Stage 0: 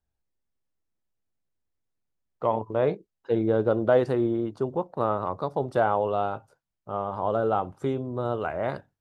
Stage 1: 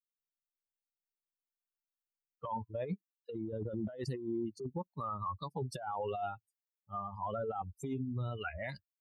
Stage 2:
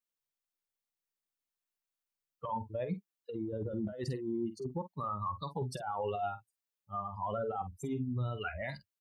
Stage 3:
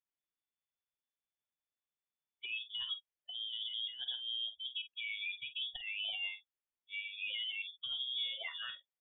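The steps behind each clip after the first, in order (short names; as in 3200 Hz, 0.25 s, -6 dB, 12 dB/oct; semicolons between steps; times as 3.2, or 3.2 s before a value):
per-bin expansion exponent 3; negative-ratio compressor -39 dBFS, ratio -1; limiter -32.5 dBFS, peak gain reduction 8 dB; gain +3.5 dB
doubler 48 ms -11.5 dB; gain +1.5 dB
inverted band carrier 3500 Hz; gain -4.5 dB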